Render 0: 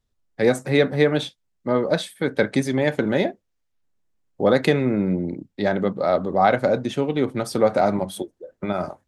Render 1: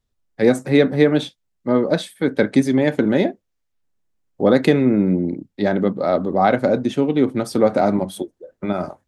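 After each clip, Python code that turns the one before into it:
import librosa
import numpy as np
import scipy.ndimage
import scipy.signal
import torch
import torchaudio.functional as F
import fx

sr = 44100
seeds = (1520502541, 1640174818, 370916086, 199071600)

y = fx.dynamic_eq(x, sr, hz=270.0, q=1.2, threshold_db=-32.0, ratio=4.0, max_db=7)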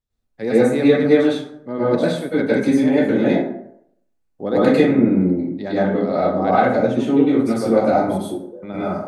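y = fx.rev_plate(x, sr, seeds[0], rt60_s=0.7, hf_ratio=0.5, predelay_ms=90, drr_db=-10.0)
y = y * librosa.db_to_amplitude(-10.0)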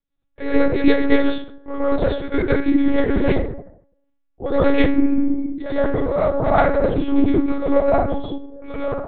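y = fx.lpc_monotone(x, sr, seeds[1], pitch_hz=280.0, order=8)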